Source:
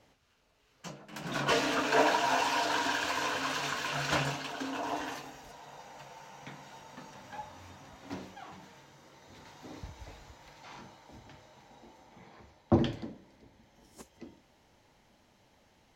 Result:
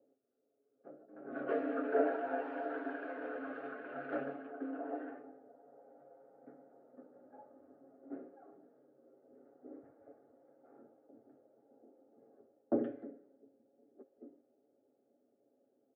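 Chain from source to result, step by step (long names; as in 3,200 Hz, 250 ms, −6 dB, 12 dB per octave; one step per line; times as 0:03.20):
phaser with its sweep stopped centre 410 Hz, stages 4
low-pass that shuts in the quiet parts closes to 570 Hz, open at −31 dBFS
Chebyshev band-pass filter 190–1,400 Hz, order 3
high-frequency loss of the air 81 metres
comb filter 7.3 ms, depth 51%
level −1.5 dB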